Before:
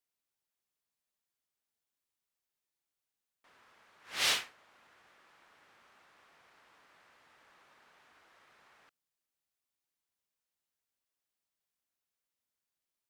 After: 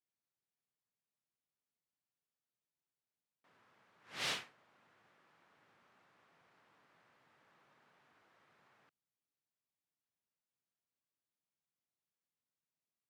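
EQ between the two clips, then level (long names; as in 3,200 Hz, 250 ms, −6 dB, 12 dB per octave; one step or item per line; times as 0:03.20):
resonant band-pass 130 Hz, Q 1.6
spectral tilt +4.5 dB per octave
+15.5 dB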